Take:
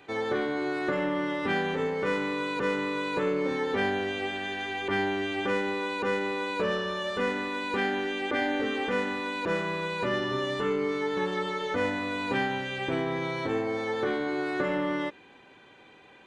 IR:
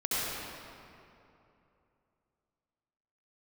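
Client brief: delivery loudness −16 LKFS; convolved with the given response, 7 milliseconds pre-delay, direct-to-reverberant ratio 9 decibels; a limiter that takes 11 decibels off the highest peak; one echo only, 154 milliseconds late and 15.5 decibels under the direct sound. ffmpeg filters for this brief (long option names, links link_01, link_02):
-filter_complex "[0:a]alimiter=level_in=3dB:limit=-24dB:level=0:latency=1,volume=-3dB,aecho=1:1:154:0.168,asplit=2[link_01][link_02];[1:a]atrim=start_sample=2205,adelay=7[link_03];[link_02][link_03]afir=irnorm=-1:irlink=0,volume=-18.5dB[link_04];[link_01][link_04]amix=inputs=2:normalize=0,volume=18dB"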